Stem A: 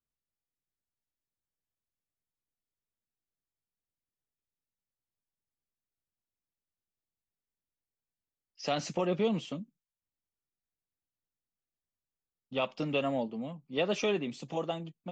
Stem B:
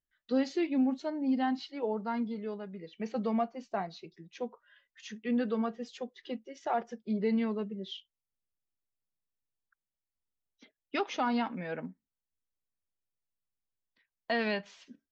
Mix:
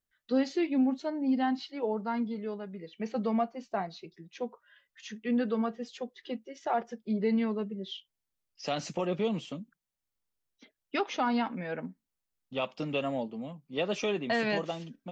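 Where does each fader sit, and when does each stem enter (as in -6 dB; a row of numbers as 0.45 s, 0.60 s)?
-1.0 dB, +1.5 dB; 0.00 s, 0.00 s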